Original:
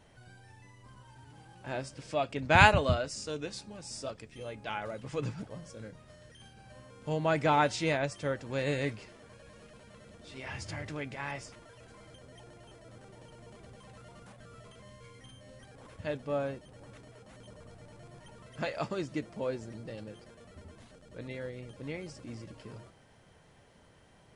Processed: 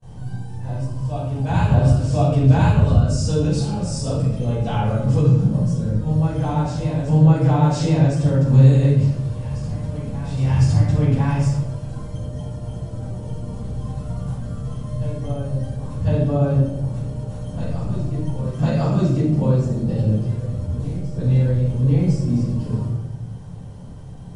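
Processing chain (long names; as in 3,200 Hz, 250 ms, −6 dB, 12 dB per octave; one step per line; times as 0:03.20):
octave-band graphic EQ 125/1,000/2,000/8,000 Hz +10/+3/−9/+6 dB
backwards echo 1,054 ms −13 dB
downward compressor 10 to 1, threshold −30 dBFS, peak gain reduction 17.5 dB
low-shelf EQ 350 Hz +10.5 dB
noise gate with hold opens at −41 dBFS
convolution reverb RT60 0.90 s, pre-delay 4 ms, DRR −11.5 dB
level −4.5 dB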